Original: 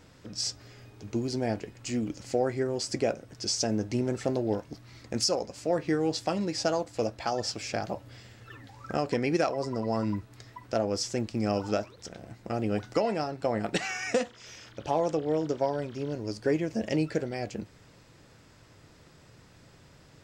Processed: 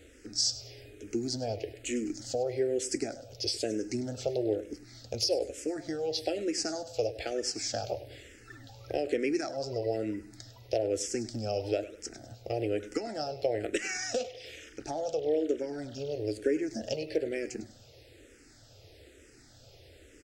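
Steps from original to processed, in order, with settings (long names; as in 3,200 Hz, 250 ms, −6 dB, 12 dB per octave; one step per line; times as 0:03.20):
downward compressor 3 to 1, threshold −29 dBFS, peak gain reduction 6.5 dB
phaser with its sweep stopped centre 430 Hz, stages 4
on a send: repeating echo 101 ms, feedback 40%, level −15 dB
on the sum: frequency shifter mixed with the dry sound −1.1 Hz
level +6 dB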